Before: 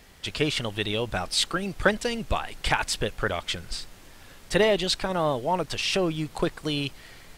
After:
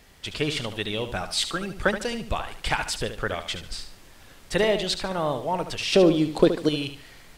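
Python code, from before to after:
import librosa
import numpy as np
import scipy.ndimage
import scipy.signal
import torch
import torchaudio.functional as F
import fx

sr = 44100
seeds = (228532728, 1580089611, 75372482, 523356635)

y = fx.graphic_eq(x, sr, hz=(250, 500, 4000), db=(11, 9, 7), at=(5.92, 6.69))
y = fx.echo_feedback(y, sr, ms=73, feedback_pct=32, wet_db=-10)
y = F.gain(torch.from_numpy(y), -1.5).numpy()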